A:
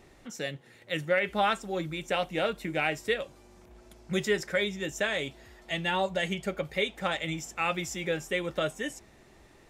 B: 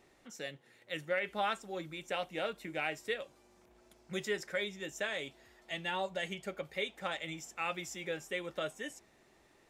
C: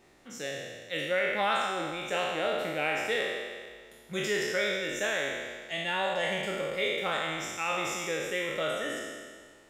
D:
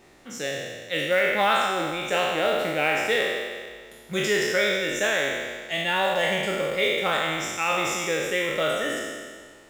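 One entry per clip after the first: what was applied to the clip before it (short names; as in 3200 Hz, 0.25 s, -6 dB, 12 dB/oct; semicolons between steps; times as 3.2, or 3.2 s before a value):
low shelf 150 Hz -11 dB; gain -7 dB
spectral trails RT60 1.73 s; gain +2.5 dB
modulation noise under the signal 27 dB; gain +6.5 dB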